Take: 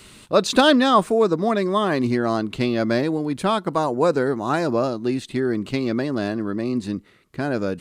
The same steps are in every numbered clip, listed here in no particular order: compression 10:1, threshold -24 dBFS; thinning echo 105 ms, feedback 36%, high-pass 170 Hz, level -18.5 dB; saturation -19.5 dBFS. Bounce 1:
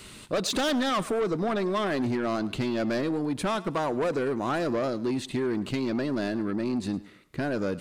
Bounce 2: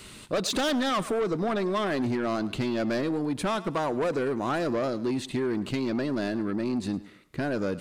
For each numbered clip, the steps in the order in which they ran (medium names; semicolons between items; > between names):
saturation > compression > thinning echo; saturation > thinning echo > compression